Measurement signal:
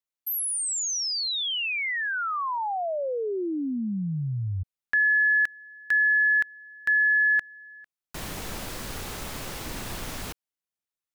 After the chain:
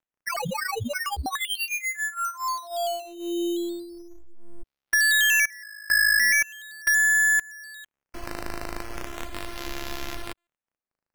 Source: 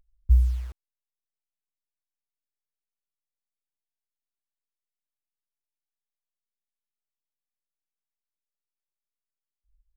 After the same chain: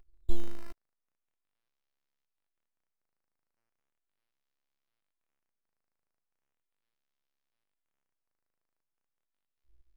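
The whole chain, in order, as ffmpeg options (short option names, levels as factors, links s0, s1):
-filter_complex "[0:a]lowshelf=f=66:g=2.5,asplit=2[s0][s1];[s1]acompressor=threshold=0.02:ratio=6:attack=60:release=189:detection=peak,volume=0.75[s2];[s0][s2]amix=inputs=2:normalize=0,afftfilt=real='hypot(re,im)*cos(PI*b)':imag='0':win_size=512:overlap=0.75,acrusher=samples=9:mix=1:aa=0.000001:lfo=1:lforange=9:lforate=0.38,aeval=exprs='0.282*(cos(1*acos(clip(val(0)/0.282,-1,1)))-cos(1*PI/2))+0.00316*(cos(6*acos(clip(val(0)/0.282,-1,1)))-cos(6*PI/2))':c=same" -ar 48000 -c:a aac -b:a 160k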